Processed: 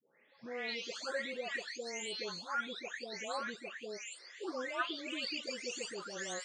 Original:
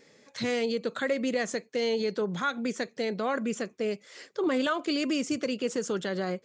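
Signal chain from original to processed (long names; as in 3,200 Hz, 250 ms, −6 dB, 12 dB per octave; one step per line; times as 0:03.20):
every frequency bin delayed by itself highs late, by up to 593 ms
high-pass filter 1,300 Hz 6 dB per octave
level −2 dB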